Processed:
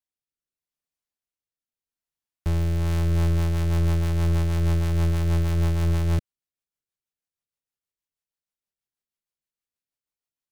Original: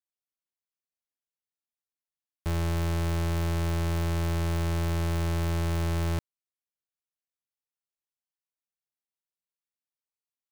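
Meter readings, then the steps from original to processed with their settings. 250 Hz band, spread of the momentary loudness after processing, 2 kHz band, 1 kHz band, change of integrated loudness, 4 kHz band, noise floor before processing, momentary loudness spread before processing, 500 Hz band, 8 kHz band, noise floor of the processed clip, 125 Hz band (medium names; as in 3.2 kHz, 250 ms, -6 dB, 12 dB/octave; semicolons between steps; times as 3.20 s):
+3.5 dB, 3 LU, -0.5 dB, -1.5 dB, +5.0 dB, 0.0 dB, under -85 dBFS, 2 LU, +1.5 dB, -0.5 dB, under -85 dBFS, +6.0 dB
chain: bass shelf 170 Hz +6.5 dB; rotary cabinet horn 0.8 Hz, later 6.3 Hz, at 2.57 s; trim +2.5 dB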